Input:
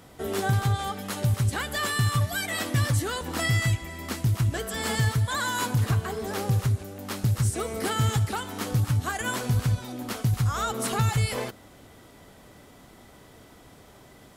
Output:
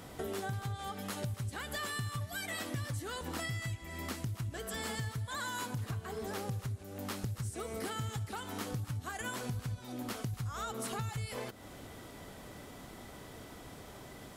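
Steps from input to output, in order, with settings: compressor 5:1, threshold -39 dBFS, peak gain reduction 17 dB; gain +1.5 dB

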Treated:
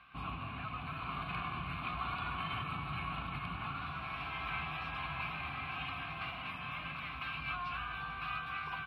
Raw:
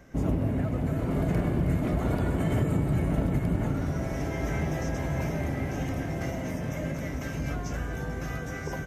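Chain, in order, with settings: vowel filter a; bell 61 Hz +9.5 dB 0.75 oct; in parallel at -1.5 dB: limiter -37 dBFS, peak gain reduction 7 dB; on the sum: EQ curve 150 Hz 0 dB, 630 Hz -27 dB, 1000 Hz +3 dB, 2100 Hz +7 dB, 4200 Hz +13 dB, 6300 Hz -25 dB, 9700 Hz +3 dB; gain +6.5 dB

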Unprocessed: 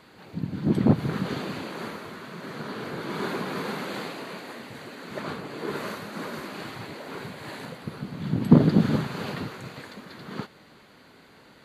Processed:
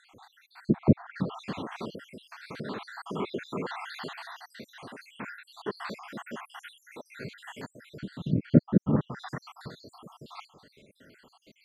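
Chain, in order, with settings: random spectral dropouts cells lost 71%; treble ducked by the level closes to 1400 Hz, closed at -23 dBFS

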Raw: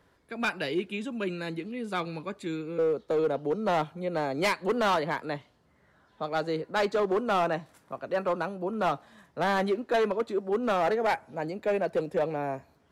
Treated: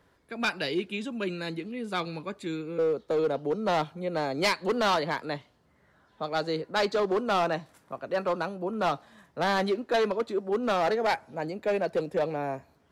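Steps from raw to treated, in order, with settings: dynamic EQ 4600 Hz, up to +7 dB, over -51 dBFS, Q 1.5

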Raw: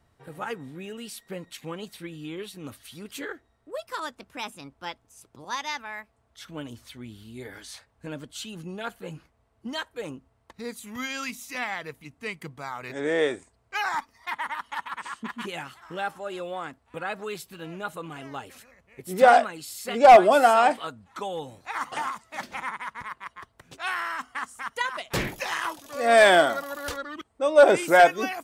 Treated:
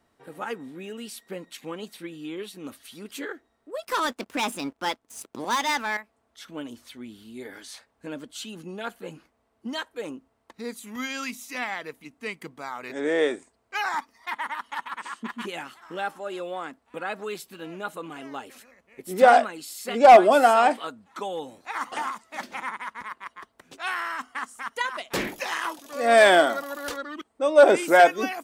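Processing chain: 3.83–5.97 sample leveller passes 3; resonant low shelf 170 Hz -9.5 dB, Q 1.5

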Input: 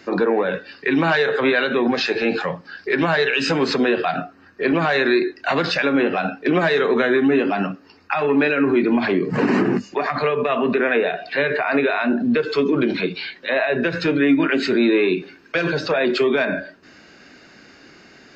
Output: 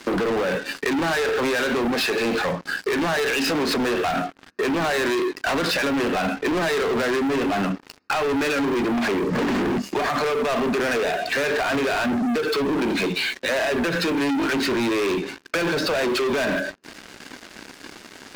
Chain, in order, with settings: resonant low shelf 160 Hz -6.5 dB, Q 1.5; sample leveller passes 5; compressor, threshold -15 dBFS, peak gain reduction 7.5 dB; gain -7 dB

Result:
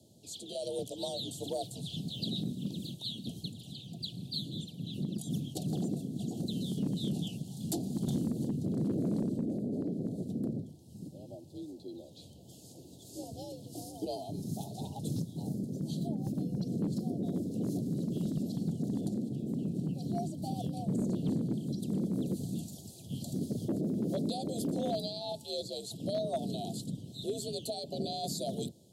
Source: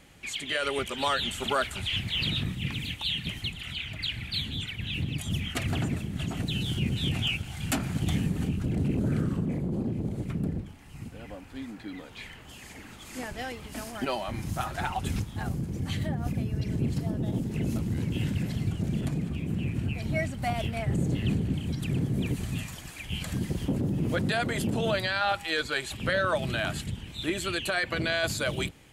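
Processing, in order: elliptic band-stop 610–3900 Hz, stop band 50 dB; frequency shift +61 Hz; one-sided clip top -22.5 dBFS, bottom -19 dBFS; gain -4 dB

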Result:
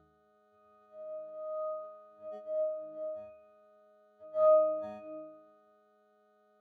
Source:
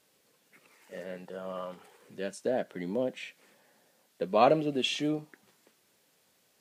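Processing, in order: frequency quantiser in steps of 6 st; steep high-pass 190 Hz 72 dB/oct; tone controls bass -10 dB, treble +14 dB; upward compressor, threshold -32 dBFS; fixed phaser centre 840 Hz, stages 4; sample-and-hold 17×; octave resonator D#, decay 0.75 s; gain +2.5 dB

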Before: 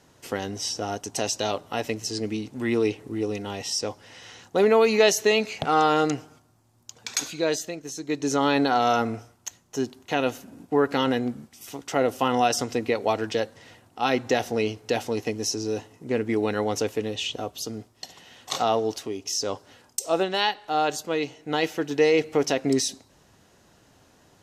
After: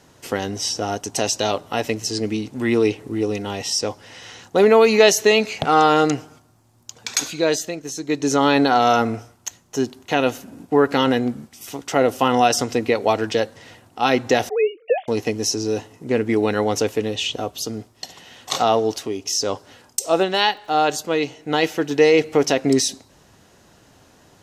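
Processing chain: 14.49–15.08 sine-wave speech; 20.27–20.67 crackle 220/s -> 50/s -47 dBFS; gain +5.5 dB

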